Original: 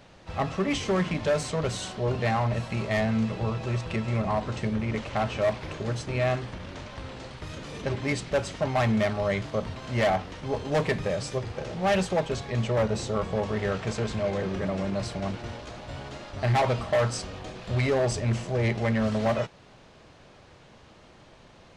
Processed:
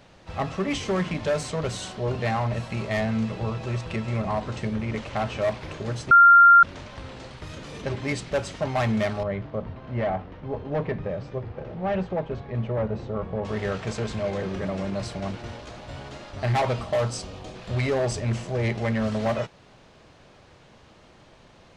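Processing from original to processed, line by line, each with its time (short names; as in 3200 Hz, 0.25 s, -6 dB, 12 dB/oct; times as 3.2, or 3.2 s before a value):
6.11–6.63 bleep 1390 Hz -9 dBFS
9.23–13.45 tape spacing loss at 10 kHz 39 dB
16.84–17.54 bell 1700 Hz -5.5 dB 0.87 oct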